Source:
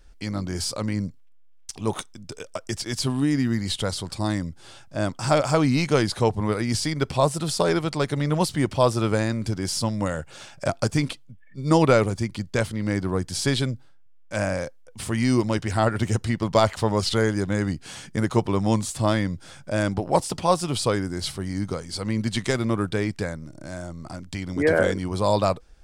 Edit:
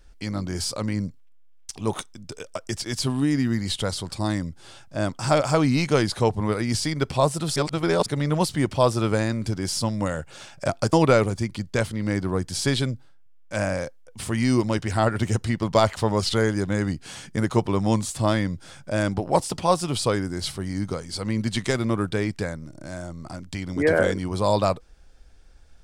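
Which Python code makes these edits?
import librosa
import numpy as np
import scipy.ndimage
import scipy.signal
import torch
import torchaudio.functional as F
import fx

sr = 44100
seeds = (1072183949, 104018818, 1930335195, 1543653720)

y = fx.edit(x, sr, fx.reverse_span(start_s=7.56, length_s=0.5),
    fx.cut(start_s=10.93, length_s=0.8), tone=tone)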